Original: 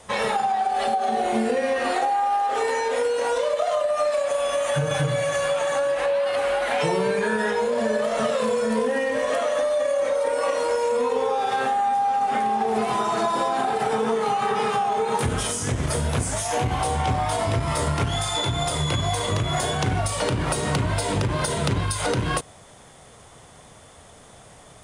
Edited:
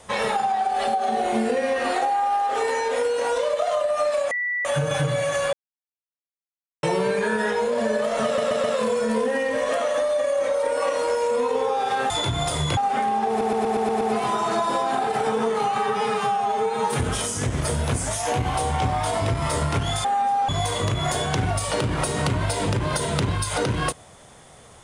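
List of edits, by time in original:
4.31–4.65 bleep 1960 Hz -22.5 dBFS
5.53–6.83 mute
8.25 stutter 0.13 s, 4 plays
11.71–12.15 swap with 18.3–18.97
12.67 stutter 0.12 s, 7 plays
14.44–15.25 stretch 1.5×

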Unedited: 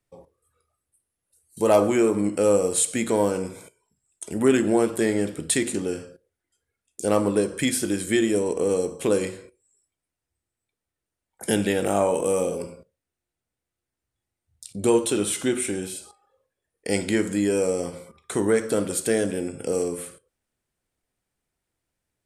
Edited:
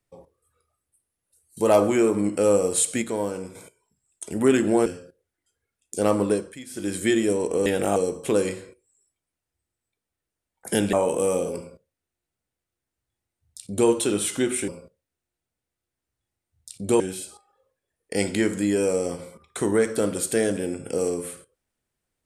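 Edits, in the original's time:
3.02–3.55 gain -5.5 dB
4.86–5.92 cut
7.36–8.01 dip -17 dB, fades 0.26 s
11.69–11.99 move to 8.72
12.63–14.95 copy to 15.74

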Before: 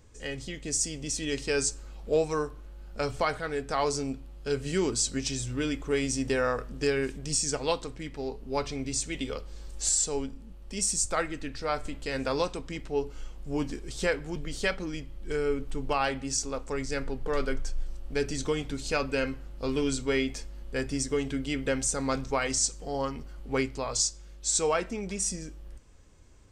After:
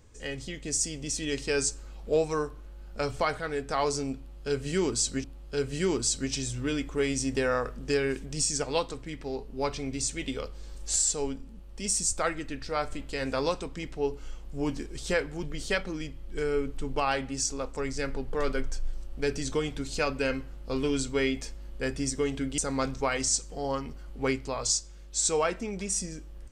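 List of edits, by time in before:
4.17–5.24 loop, 2 plays
21.51–21.88 cut

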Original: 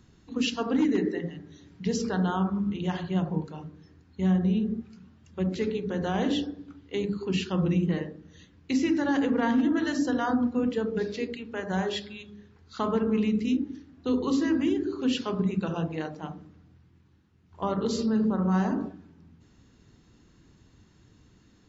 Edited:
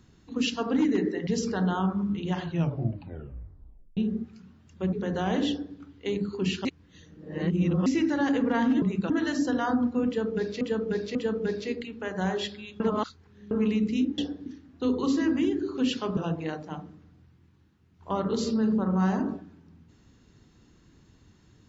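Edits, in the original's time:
1.27–1.84 cut
3.01 tape stop 1.53 s
5.5–5.81 cut
6.36–6.64 copy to 13.7
7.53–8.74 reverse
10.67–11.21 loop, 3 plays
12.32–13.03 reverse
15.41–15.69 move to 9.7

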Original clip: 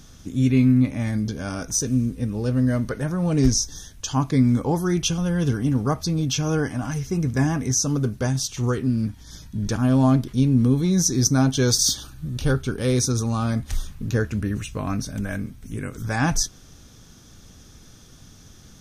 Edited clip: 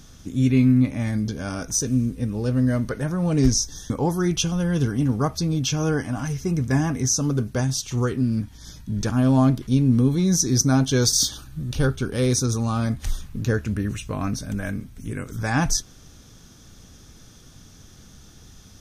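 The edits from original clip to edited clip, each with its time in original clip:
3.9–4.56 cut

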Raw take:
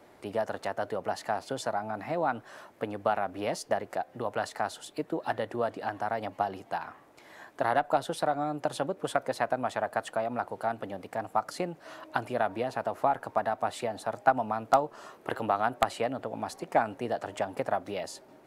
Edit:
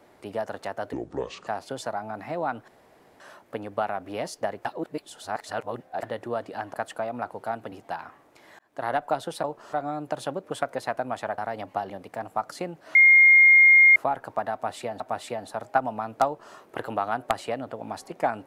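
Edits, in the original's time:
0.93–1.27 speed 63%
2.48 insert room tone 0.52 s
3.93–5.31 reverse
6.02–6.54 swap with 9.91–10.89
7.41–7.75 fade in
11.94–12.95 bleep 2130 Hz -11 dBFS
13.52–13.99 loop, 2 plays
14.78–15.07 copy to 8.26

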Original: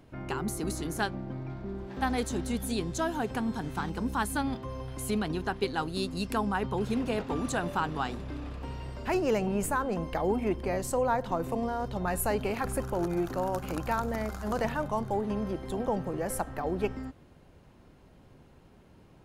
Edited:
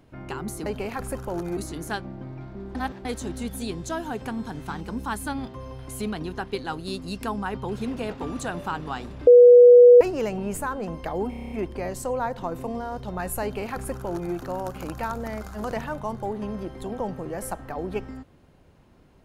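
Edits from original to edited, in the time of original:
1.84–2.14 reverse
8.36–9.1 bleep 487 Hz -7 dBFS
10.39 stutter 0.03 s, 8 plays
12.31–13.22 copy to 0.66

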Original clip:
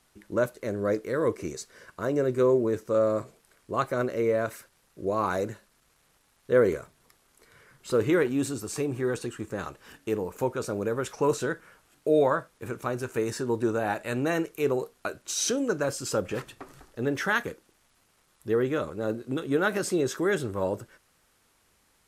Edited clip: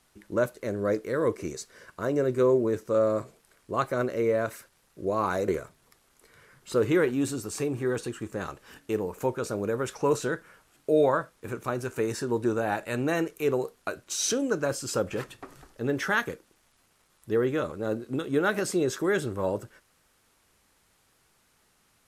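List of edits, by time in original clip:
5.48–6.66 cut

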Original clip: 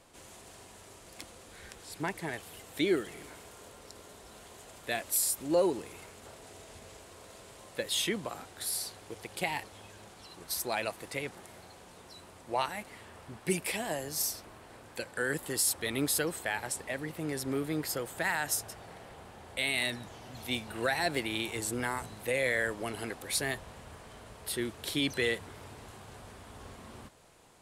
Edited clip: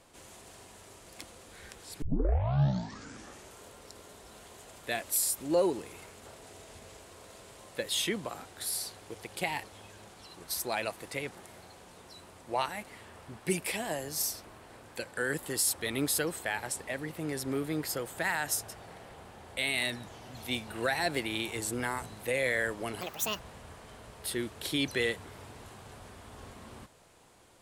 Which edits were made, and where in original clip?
2.02 tape start 1.57 s
23.01–23.62 speed 158%

